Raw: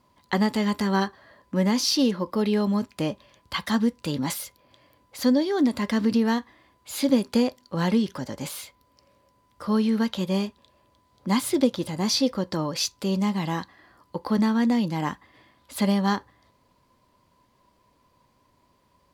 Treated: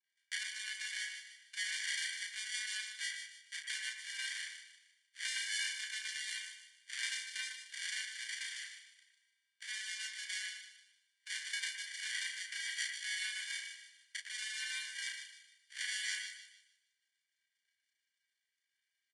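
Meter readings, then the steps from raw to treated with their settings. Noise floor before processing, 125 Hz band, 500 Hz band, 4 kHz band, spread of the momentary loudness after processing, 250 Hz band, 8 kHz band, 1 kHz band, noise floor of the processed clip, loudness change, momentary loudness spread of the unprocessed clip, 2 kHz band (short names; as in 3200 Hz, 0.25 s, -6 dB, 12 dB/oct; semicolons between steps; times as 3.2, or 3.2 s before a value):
-65 dBFS, under -40 dB, under -40 dB, -7.0 dB, 12 LU, under -40 dB, -6.0 dB, -36.5 dB, under -85 dBFS, -14.5 dB, 12 LU, -2.5 dB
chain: minimum comb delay 3.1 ms; compressor 16:1, threshold -35 dBFS, peak gain reduction 20.5 dB; sample-and-hold 34×; downsampling 22050 Hz; steep high-pass 1600 Hz 48 dB/oct; doubler 34 ms -4 dB; split-band echo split 2600 Hz, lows 0.114 s, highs 0.152 s, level -5 dB; three-band expander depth 70%; gain +6.5 dB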